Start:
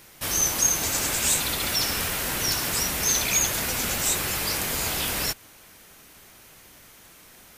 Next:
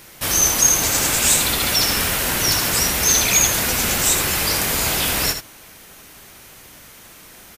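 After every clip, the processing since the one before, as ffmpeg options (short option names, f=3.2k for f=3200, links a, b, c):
-af "aecho=1:1:78:0.376,volume=6.5dB"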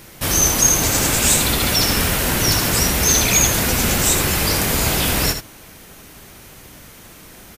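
-af "lowshelf=f=480:g=7.5"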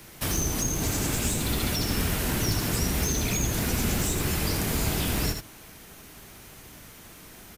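-filter_complex "[0:a]bandreject=f=530:w=13,acrossover=split=450[a][b];[b]acompressor=threshold=-23dB:ratio=6[c];[a][c]amix=inputs=2:normalize=0,acrossover=split=110|3300[d][e][f];[f]acrusher=bits=4:mode=log:mix=0:aa=0.000001[g];[d][e][g]amix=inputs=3:normalize=0,volume=-5.5dB"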